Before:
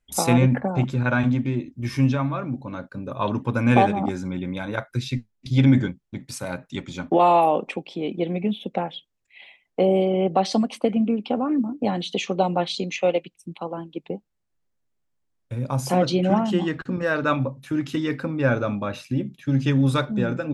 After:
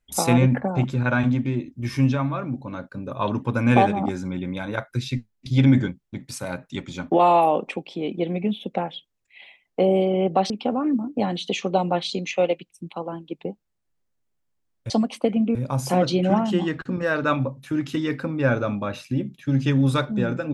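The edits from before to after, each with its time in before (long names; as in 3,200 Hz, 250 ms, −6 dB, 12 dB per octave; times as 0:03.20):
0:10.50–0:11.15: move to 0:15.55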